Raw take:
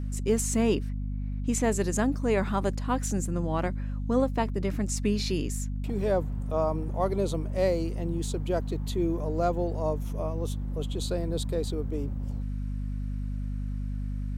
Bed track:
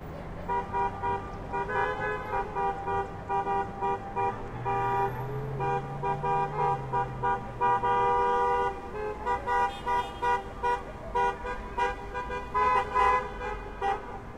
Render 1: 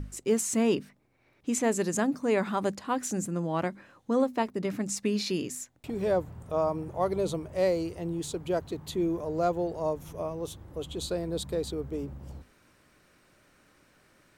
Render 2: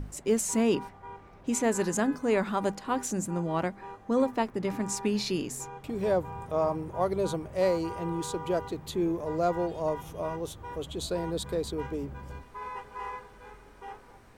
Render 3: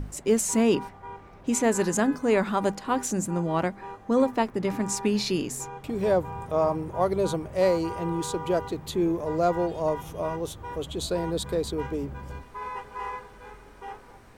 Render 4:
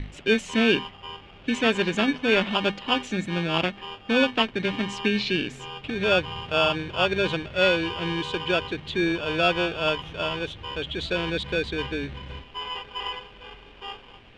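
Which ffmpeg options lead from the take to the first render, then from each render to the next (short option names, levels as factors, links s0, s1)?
-af "bandreject=f=50:t=h:w=6,bandreject=f=100:t=h:w=6,bandreject=f=150:t=h:w=6,bandreject=f=200:t=h:w=6,bandreject=f=250:t=h:w=6"
-filter_complex "[1:a]volume=0.188[s0];[0:a][s0]amix=inputs=2:normalize=0"
-af "volume=1.5"
-filter_complex "[0:a]acrossover=split=1500[s0][s1];[s0]acrusher=samples=22:mix=1:aa=0.000001[s2];[s2][s1]amix=inputs=2:normalize=0,lowpass=f=3000:t=q:w=3.5"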